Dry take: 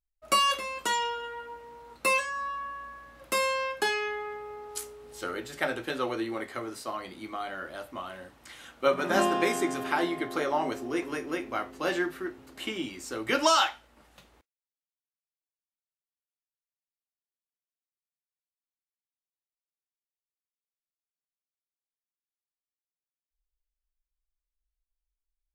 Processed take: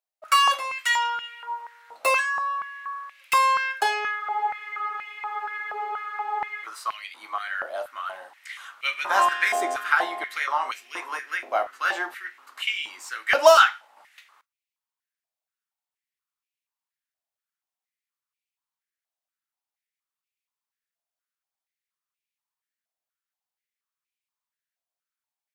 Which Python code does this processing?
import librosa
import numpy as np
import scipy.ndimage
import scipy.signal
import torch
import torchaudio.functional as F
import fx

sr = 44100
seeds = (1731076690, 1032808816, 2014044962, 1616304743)

y = fx.tracing_dist(x, sr, depth_ms=0.027)
y = fx.spec_freeze(y, sr, seeds[0], at_s=4.23, hold_s=2.41)
y = fx.filter_held_highpass(y, sr, hz=4.2, low_hz=670.0, high_hz=2400.0)
y = y * librosa.db_to_amplitude(1.5)